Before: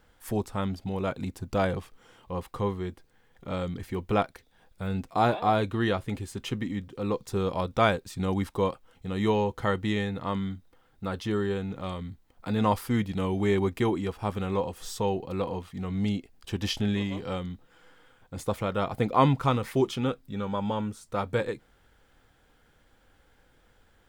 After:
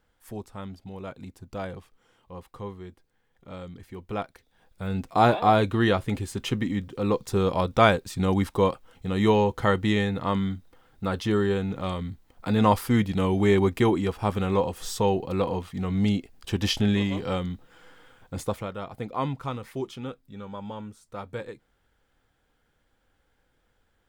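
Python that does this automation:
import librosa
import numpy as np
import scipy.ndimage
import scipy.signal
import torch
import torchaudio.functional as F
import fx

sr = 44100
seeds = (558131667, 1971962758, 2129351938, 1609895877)

y = fx.gain(x, sr, db=fx.line((3.97, -8.0), (5.24, 4.5), (18.35, 4.5), (18.78, -7.5)))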